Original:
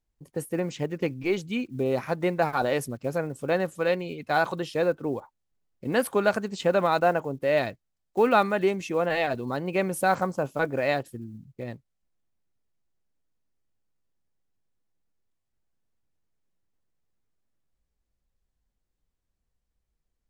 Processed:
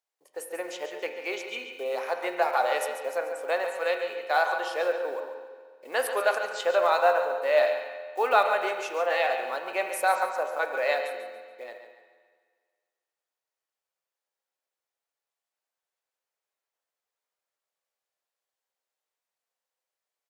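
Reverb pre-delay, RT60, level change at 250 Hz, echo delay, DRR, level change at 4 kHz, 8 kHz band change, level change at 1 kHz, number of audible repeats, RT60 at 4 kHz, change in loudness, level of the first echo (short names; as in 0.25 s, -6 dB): 11 ms, 1.7 s, -16.5 dB, 0.141 s, 4.0 dB, +1.0 dB, +0.5 dB, +1.5 dB, 2, 1.6 s, -0.5 dB, -10.0 dB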